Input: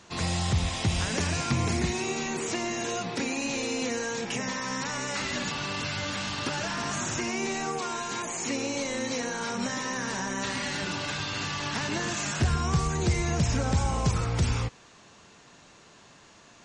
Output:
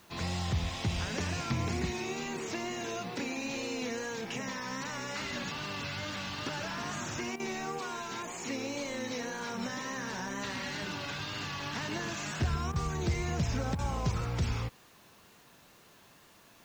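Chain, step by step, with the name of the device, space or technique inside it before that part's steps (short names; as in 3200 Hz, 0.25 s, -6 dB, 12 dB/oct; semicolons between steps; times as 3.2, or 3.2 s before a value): worn cassette (LPF 6000 Hz 12 dB/oct; wow and flutter; level dips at 7.36/12.72/13.75, 36 ms -8 dB; white noise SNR 30 dB); gain -5.5 dB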